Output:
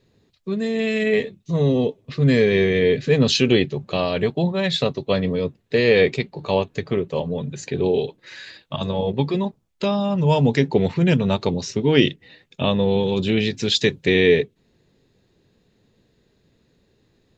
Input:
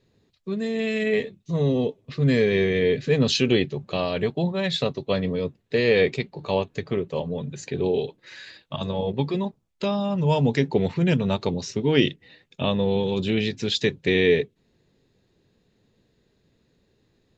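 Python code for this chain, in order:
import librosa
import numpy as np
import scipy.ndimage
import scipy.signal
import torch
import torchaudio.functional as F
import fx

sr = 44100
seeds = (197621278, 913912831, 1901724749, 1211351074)

y = fx.high_shelf(x, sr, hz=4600.0, db=5.0, at=(13.54, 14.07))
y = F.gain(torch.from_numpy(y), 3.5).numpy()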